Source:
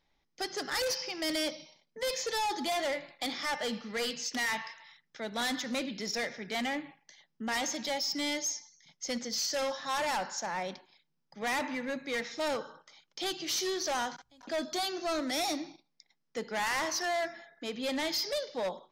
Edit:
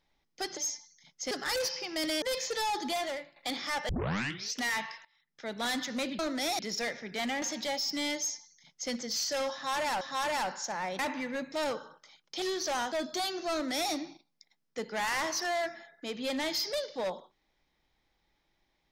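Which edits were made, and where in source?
1.48–1.98 s: delete
2.67–3.12 s: fade out, to -13.5 dB
3.65 s: tape start 0.65 s
4.81–5.21 s: fade in quadratic, from -17.5 dB
6.78–7.64 s: delete
8.39–9.13 s: copy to 0.57 s
9.75–10.23 s: loop, 2 plays
10.73–11.53 s: delete
12.06–12.36 s: delete
13.26–13.62 s: delete
14.12–14.51 s: delete
15.11–15.51 s: copy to 5.95 s

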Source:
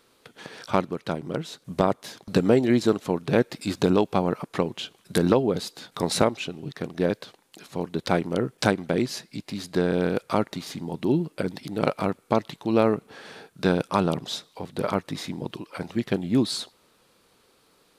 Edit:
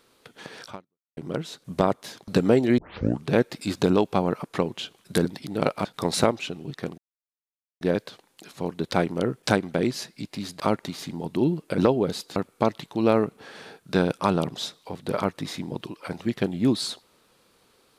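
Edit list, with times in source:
0.67–1.17 s: fade out exponential
2.78 s: tape start 0.49 s
5.25–5.83 s: swap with 11.46–12.06 s
6.96 s: insert silence 0.83 s
9.75–10.28 s: delete

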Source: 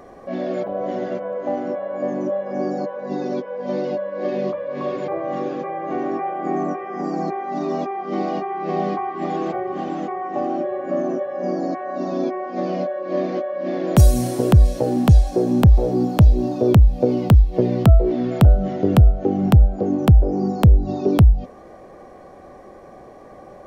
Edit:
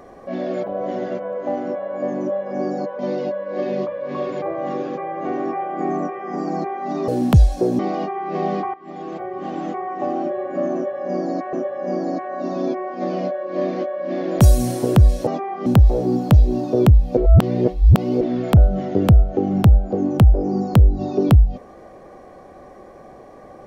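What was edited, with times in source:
2.99–3.65 s: delete
7.74–8.13 s: swap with 14.83–15.54 s
9.08–10.01 s: fade in, from -17 dB
11.09–11.87 s: loop, 2 plays
17.05–18.09 s: reverse

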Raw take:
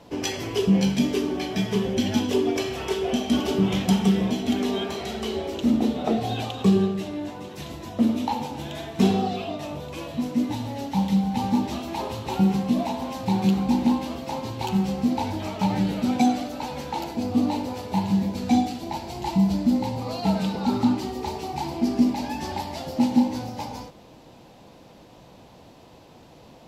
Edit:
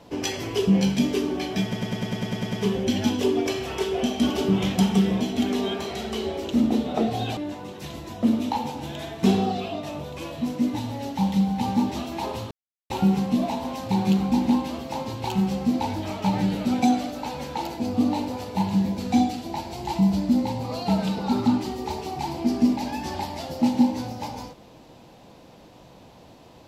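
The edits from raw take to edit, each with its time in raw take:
1.63 s: stutter 0.10 s, 10 plays
6.47–7.13 s: delete
12.27 s: insert silence 0.39 s

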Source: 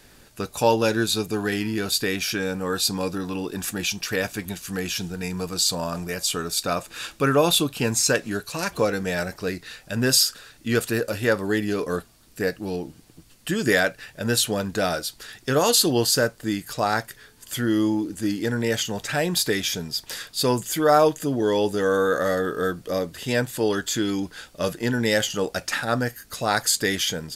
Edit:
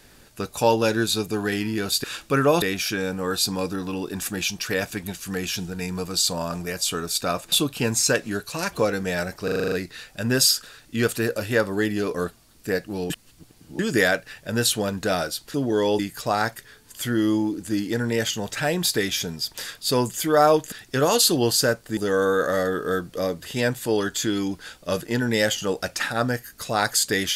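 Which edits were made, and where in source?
6.94–7.52 s: move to 2.04 s
9.44 s: stutter 0.04 s, 8 plays
12.82–13.51 s: reverse
15.26–16.51 s: swap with 21.24–21.69 s

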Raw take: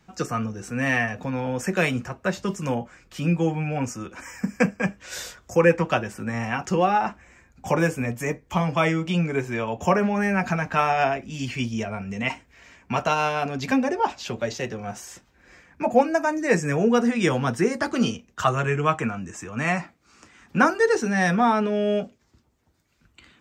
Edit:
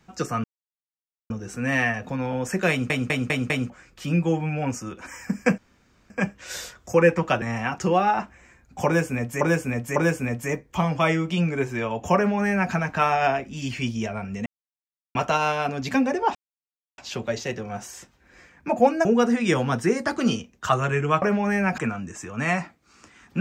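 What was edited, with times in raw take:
0.44 s: insert silence 0.86 s
1.84 s: stutter in place 0.20 s, 5 plays
4.72 s: insert room tone 0.52 s
6.04–6.29 s: delete
7.73–8.28 s: loop, 3 plays
9.93–10.49 s: copy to 18.97 s
12.23–12.92 s: mute
14.12 s: insert silence 0.63 s
16.19–16.80 s: delete

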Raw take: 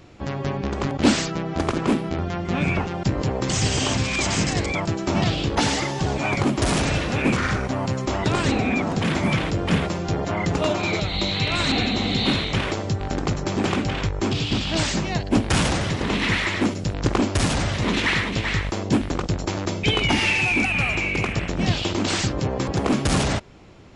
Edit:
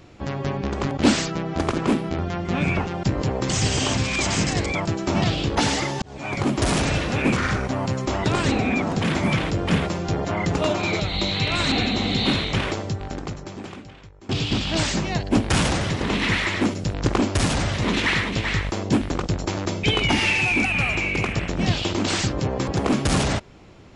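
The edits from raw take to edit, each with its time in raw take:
6.02–6.53 s: fade in
12.66–14.29 s: fade out quadratic, to -23 dB

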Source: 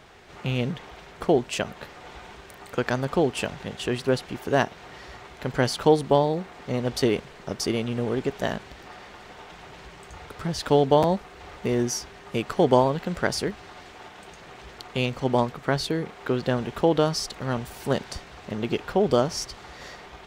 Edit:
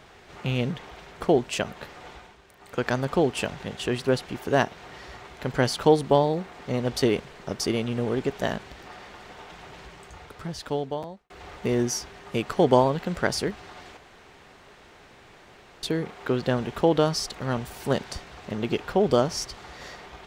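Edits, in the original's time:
2.06–2.86 s: dip -9.5 dB, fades 0.29 s
9.79–11.30 s: fade out
13.97–15.83 s: room tone

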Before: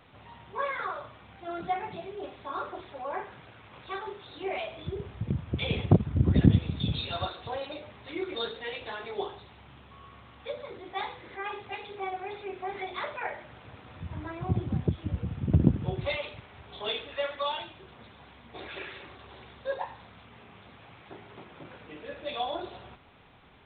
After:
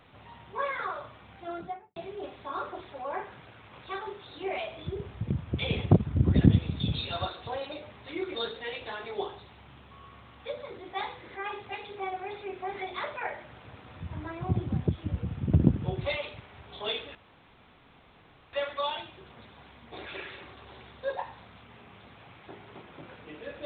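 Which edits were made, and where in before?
1.43–1.96 s: studio fade out
17.15 s: insert room tone 1.38 s

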